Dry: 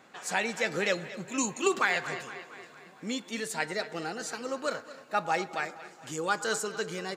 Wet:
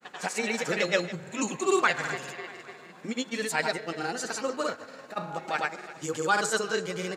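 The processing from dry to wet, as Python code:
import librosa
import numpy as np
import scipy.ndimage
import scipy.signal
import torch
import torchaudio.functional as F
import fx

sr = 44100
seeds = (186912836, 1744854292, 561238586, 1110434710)

y = fx.granulator(x, sr, seeds[0], grain_ms=100.0, per_s=20.0, spray_ms=100.0, spread_st=0)
y = F.gain(torch.from_numpy(y), 4.5).numpy()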